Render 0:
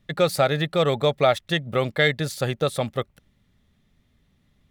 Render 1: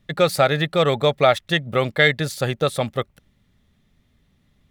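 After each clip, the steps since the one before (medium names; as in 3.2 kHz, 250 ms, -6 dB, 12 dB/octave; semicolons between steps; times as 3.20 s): dynamic bell 1.8 kHz, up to +3 dB, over -29 dBFS, Q 0.71; trim +2 dB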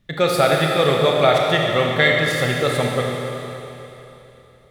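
Schroeder reverb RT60 3.2 s, combs from 25 ms, DRR -1 dB; trim -1 dB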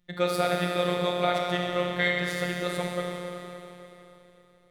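robot voice 177 Hz; trim -7.5 dB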